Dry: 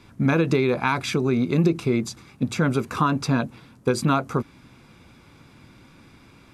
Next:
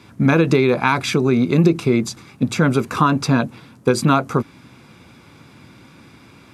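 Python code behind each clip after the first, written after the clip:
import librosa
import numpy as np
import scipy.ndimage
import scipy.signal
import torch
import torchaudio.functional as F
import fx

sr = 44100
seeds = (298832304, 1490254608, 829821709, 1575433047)

y = scipy.signal.sosfilt(scipy.signal.butter(2, 84.0, 'highpass', fs=sr, output='sos'), x)
y = y * librosa.db_to_amplitude(5.5)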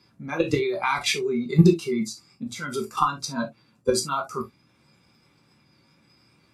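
y = fx.level_steps(x, sr, step_db=12)
y = fx.noise_reduce_blind(y, sr, reduce_db=16)
y = fx.rev_gated(y, sr, seeds[0], gate_ms=90, shape='falling', drr_db=0.5)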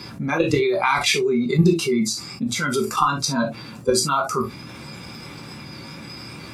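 y = fx.env_flatten(x, sr, amount_pct=50)
y = y * librosa.db_to_amplitude(-2.0)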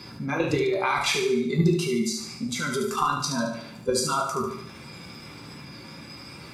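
y = fx.echo_feedback(x, sr, ms=73, feedback_pct=48, wet_db=-6)
y = y * librosa.db_to_amplitude(-6.0)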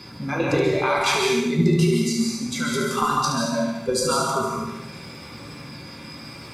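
y = fx.rev_plate(x, sr, seeds[1], rt60_s=0.79, hf_ratio=0.8, predelay_ms=120, drr_db=0.5)
y = y * librosa.db_to_amplitude(1.0)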